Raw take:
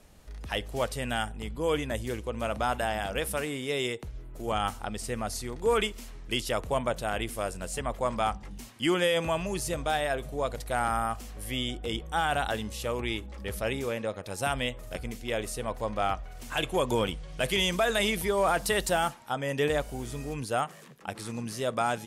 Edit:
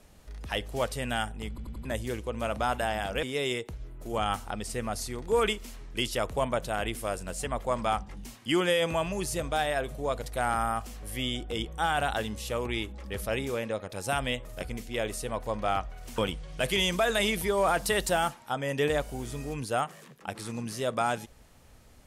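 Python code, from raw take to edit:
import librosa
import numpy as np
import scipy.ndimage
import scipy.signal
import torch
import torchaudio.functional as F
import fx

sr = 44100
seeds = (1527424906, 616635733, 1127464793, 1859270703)

y = fx.edit(x, sr, fx.stutter_over(start_s=1.49, slice_s=0.09, count=4),
    fx.cut(start_s=3.23, length_s=0.34),
    fx.cut(start_s=16.52, length_s=0.46), tone=tone)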